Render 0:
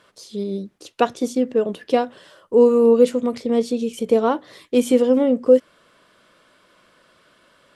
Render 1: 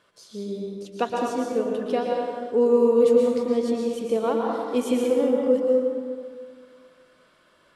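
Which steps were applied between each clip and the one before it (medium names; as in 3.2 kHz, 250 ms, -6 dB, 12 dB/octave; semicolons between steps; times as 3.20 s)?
plate-style reverb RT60 1.9 s, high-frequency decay 0.5×, pre-delay 105 ms, DRR -1.5 dB; trim -7.5 dB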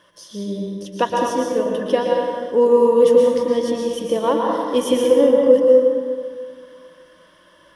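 rippled EQ curve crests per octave 1.2, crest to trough 11 dB; trim +6 dB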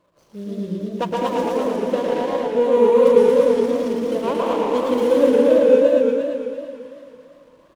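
median filter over 25 samples; on a send: delay 227 ms -3.5 dB; on the sum: modulated delay 113 ms, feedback 71%, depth 191 cents, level -4 dB; trim -4 dB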